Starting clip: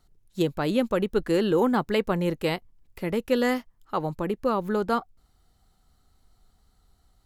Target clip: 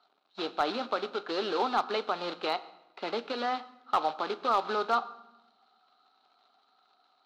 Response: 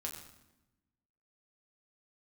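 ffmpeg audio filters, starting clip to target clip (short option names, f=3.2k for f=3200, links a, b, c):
-filter_complex "[0:a]highshelf=f=2.5k:g=-7.5,alimiter=limit=-19.5dB:level=0:latency=1:release=222,acrusher=bits=3:mode=log:mix=0:aa=0.000001,highpass=f=340:w=0.5412,highpass=f=340:w=1.3066,equalizer=f=350:t=q:w=4:g=-7,equalizer=f=510:t=q:w=4:g=-8,equalizer=f=750:t=q:w=4:g=7,equalizer=f=1.3k:t=q:w=4:g=9,equalizer=f=1.9k:t=q:w=4:g=-7,equalizer=f=4k:t=q:w=4:g=10,lowpass=f=4.2k:w=0.5412,lowpass=f=4.2k:w=1.3066,asplit=2[a][b];[1:a]atrim=start_sample=2205,highshelf=f=10k:g=11[c];[b][c]afir=irnorm=-1:irlink=0,volume=-6.5dB[d];[a][d]amix=inputs=2:normalize=0,volume=17.5dB,asoftclip=hard,volume=-17.5dB"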